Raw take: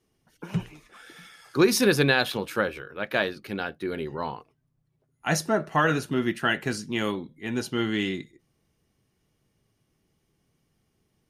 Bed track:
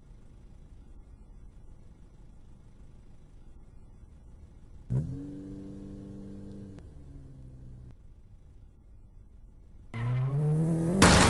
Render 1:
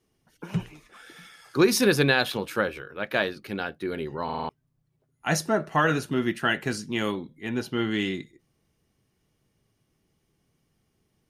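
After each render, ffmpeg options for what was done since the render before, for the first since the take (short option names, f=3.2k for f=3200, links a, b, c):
-filter_complex "[0:a]asettb=1/sr,asplit=3[a][b][c];[a]atrim=end=7.494[d];[b]atrim=start=7.49:end=7.91,asetpts=PTS-STARTPTS,afade=t=in:d=0.004:c=qsin,afade=t=out:st=0.416:d=0.004:c=qsin,equalizer=f=7.8k:w=0.93:g=-8.5[e];[c]atrim=start=7.906[f];[d][e]acrossfade=d=0.004:c1=hsin:c2=qsin[g];[g][f]acrossfade=d=0.004:c1=qsin:c2=hsin,asplit=6[h][i][j][k][l][m];[h]atrim=end=4.292[n];[i]atrim=start=4.238:end=4.292[o];[j]atrim=start=4.238:end=4.292[p];[k]atrim=start=4.238:end=4.292[q];[l]atrim=start=4.238:end=4.292[r];[m]atrim=start=4.488[s];[n][o]acrossfade=d=0.004:c1=hsin:c2=hsin[t];[t][p]acrossfade=d=0.004:c1=hsin:c2=hsin[u];[u][q]acrossfade=d=0.004:c1=hsin:c2=hsin[v];[v][r]acrossfade=d=0.004:c1=hsin:c2=hsin[w];[w][s]acrossfade=d=0.004:c1=hsin:c2=hsin"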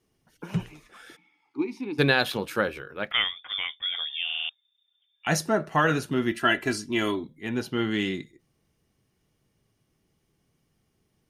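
-filter_complex "[0:a]asplit=3[a][b][c];[a]afade=t=out:st=1.15:d=0.02[d];[b]asplit=3[e][f][g];[e]bandpass=f=300:t=q:w=8,volume=0dB[h];[f]bandpass=f=870:t=q:w=8,volume=-6dB[i];[g]bandpass=f=2.24k:t=q:w=8,volume=-9dB[j];[h][i][j]amix=inputs=3:normalize=0,afade=t=in:st=1.15:d=0.02,afade=t=out:st=1.98:d=0.02[k];[c]afade=t=in:st=1.98:d=0.02[l];[d][k][l]amix=inputs=3:normalize=0,asettb=1/sr,asplit=3[m][n][o];[m]atrim=end=3.114[p];[n]atrim=start=3.11:end=5.27,asetpts=PTS-STARTPTS,afade=t=in:d=0.004:c=qsin,afade=t=out:st=2.156:d=0.004:c=qsin,lowpass=f=3.1k:t=q:w=0.5098,lowpass=f=3.1k:t=q:w=0.6013,lowpass=f=3.1k:t=q:w=0.9,lowpass=f=3.1k:t=q:w=2.563,afreqshift=-3700[q];[o]atrim=start=5.266[r];[p][q]acrossfade=d=0.004:c1=hsin:c2=qsin[s];[s][r]acrossfade=d=0.004:c1=qsin:c2=hsin,asettb=1/sr,asplit=3[t][u][v];[t]atrim=end=6.314[w];[u]atrim=start=6.31:end=7.24,asetpts=PTS-STARTPTS,afade=t=in:d=0.004:c=qsin,afade=t=out:st=0.926:d=0.004:c=qsin,aecho=1:1:3:0.65,atrim=end_sample=41013[x];[v]atrim=start=7.236[y];[w][x]acrossfade=d=0.004:c1=hsin:c2=qsin[z];[z][y]acrossfade=d=0.004:c1=qsin:c2=hsin"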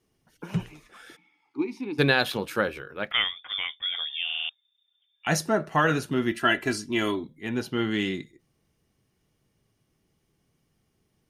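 -af anull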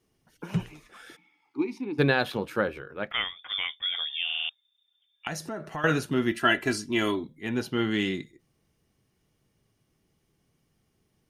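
-filter_complex "[0:a]asettb=1/sr,asplit=3[a][b][c];[a]atrim=end=1.784[d];[b]atrim=start=1.78:end=3.39,asetpts=PTS-STARTPTS,afade=t=in:d=0.004:c=qsin,afade=t=out:st=1.606:d=0.004:c=qsin,highshelf=f=2.4k:g=-9[e];[c]atrim=start=3.386[f];[d][e]acrossfade=d=0.004:c1=hsin:c2=qsin[g];[g][f]acrossfade=d=0.004:c1=qsin:c2=hsin,asettb=1/sr,asplit=3[h][i][j];[h]atrim=end=5.274[k];[i]atrim=start=5.27:end=5.84,asetpts=PTS-STARTPTS,afade=t=in:d=0.004:c=qsin,afade=t=out:st=0.566:d=0.004:c=qsin,acompressor=threshold=-34dB:ratio=3:attack=3.2:release=140:knee=1:detection=peak[l];[j]atrim=start=5.836[m];[k][l]acrossfade=d=0.004:c1=hsin:c2=qsin[n];[n][m]acrossfade=d=0.004:c1=qsin:c2=hsin"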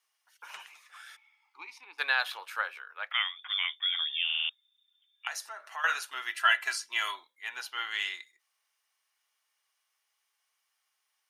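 -af "highpass=f=940:w=0.5412,highpass=f=940:w=1.3066"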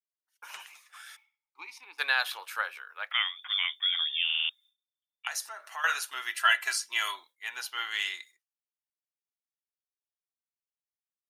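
-af "agate=range=-33dB:threshold=-54dB:ratio=3:detection=peak,highshelf=f=5.9k:g=8.5"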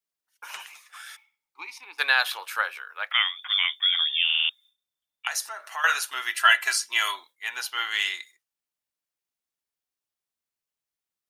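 -af "volume=5.5dB"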